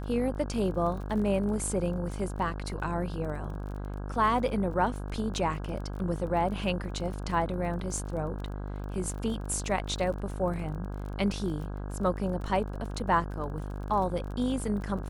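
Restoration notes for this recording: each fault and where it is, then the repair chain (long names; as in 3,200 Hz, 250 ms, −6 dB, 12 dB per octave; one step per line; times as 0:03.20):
mains buzz 50 Hz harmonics 33 −36 dBFS
surface crackle 27 per second −38 dBFS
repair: click removal
hum removal 50 Hz, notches 33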